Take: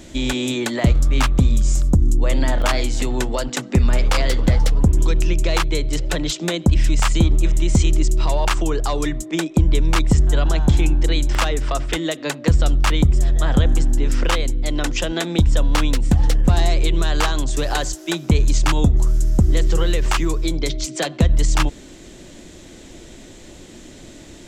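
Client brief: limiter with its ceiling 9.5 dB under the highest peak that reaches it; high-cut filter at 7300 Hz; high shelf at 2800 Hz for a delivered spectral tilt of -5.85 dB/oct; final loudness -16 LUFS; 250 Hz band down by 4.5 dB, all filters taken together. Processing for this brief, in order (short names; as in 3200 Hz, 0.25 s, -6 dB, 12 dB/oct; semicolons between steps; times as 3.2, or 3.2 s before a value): LPF 7300 Hz; bell 250 Hz -6.5 dB; high shelf 2800 Hz -7.5 dB; gain +9.5 dB; limiter -5.5 dBFS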